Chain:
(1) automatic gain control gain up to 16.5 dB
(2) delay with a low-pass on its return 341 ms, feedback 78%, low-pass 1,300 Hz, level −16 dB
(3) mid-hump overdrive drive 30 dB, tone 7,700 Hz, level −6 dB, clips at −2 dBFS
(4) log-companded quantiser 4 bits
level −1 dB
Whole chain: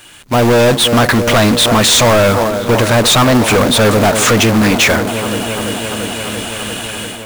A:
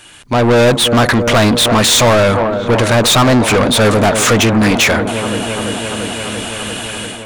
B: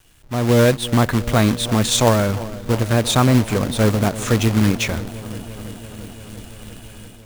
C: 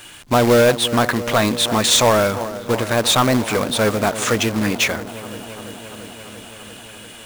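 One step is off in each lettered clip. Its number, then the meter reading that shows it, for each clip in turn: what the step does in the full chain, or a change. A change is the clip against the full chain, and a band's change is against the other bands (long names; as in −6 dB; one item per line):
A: 4, distortion level −15 dB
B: 3, change in crest factor +7.0 dB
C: 1, change in momentary loudness spread +10 LU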